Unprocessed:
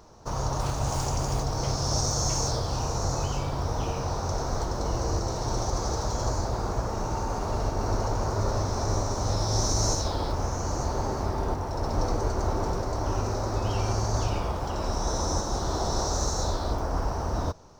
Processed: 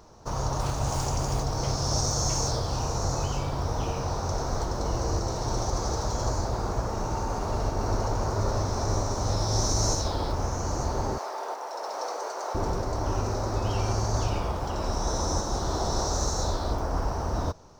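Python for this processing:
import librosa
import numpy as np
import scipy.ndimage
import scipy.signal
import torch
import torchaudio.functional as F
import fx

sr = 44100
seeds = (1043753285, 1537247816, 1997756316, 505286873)

y = fx.highpass(x, sr, hz=500.0, slope=24, at=(11.18, 12.55))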